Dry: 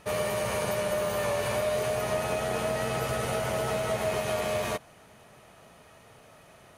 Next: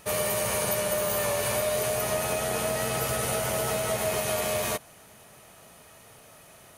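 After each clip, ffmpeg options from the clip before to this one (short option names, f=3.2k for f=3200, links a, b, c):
-af "aemphasis=mode=production:type=50kf"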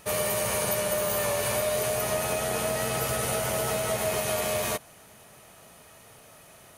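-af anull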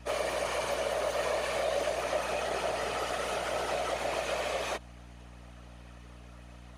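-af "highpass=360,lowpass=5k,afftfilt=real='hypot(re,im)*cos(2*PI*random(0))':imag='hypot(re,im)*sin(2*PI*random(1))':win_size=512:overlap=0.75,aeval=exprs='val(0)+0.00251*(sin(2*PI*60*n/s)+sin(2*PI*2*60*n/s)/2+sin(2*PI*3*60*n/s)/3+sin(2*PI*4*60*n/s)/4+sin(2*PI*5*60*n/s)/5)':c=same,volume=3.5dB"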